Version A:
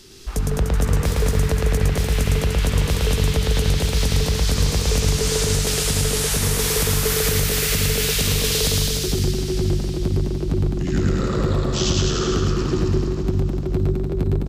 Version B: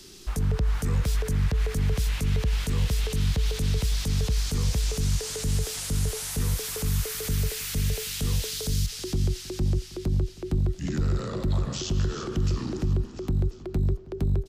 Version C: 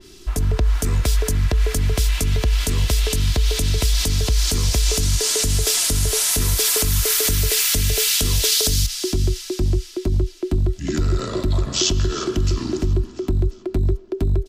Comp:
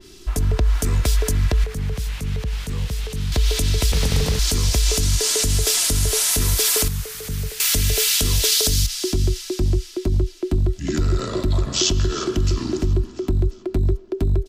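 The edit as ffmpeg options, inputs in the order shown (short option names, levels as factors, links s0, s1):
-filter_complex "[1:a]asplit=2[s0][s1];[2:a]asplit=4[s2][s3][s4][s5];[s2]atrim=end=1.642[s6];[s0]atrim=start=1.638:end=3.322[s7];[s3]atrim=start=3.318:end=3.922[s8];[0:a]atrim=start=3.918:end=4.392[s9];[s4]atrim=start=4.388:end=6.882[s10];[s1]atrim=start=6.878:end=7.602[s11];[s5]atrim=start=7.598[s12];[s6][s7]acrossfade=d=0.004:c1=hsin:c2=hsin[s13];[s13][s8]acrossfade=d=0.004:c1=hsin:c2=hsin[s14];[s14][s9]acrossfade=d=0.004:c1=hsin:c2=hsin[s15];[s15][s10]acrossfade=d=0.004:c1=hsin:c2=hsin[s16];[s16][s11]acrossfade=d=0.004:c1=hsin:c2=hsin[s17];[s17][s12]acrossfade=d=0.004:c1=hsin:c2=hsin"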